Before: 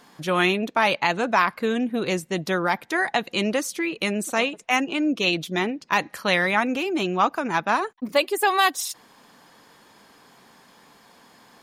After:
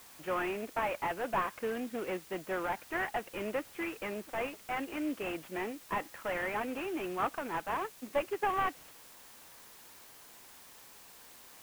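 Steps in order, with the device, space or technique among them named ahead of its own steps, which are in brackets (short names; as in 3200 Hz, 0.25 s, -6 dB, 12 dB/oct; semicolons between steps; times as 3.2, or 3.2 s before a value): army field radio (BPF 310–2900 Hz; CVSD 16 kbps; white noise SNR 18 dB); gain -8.5 dB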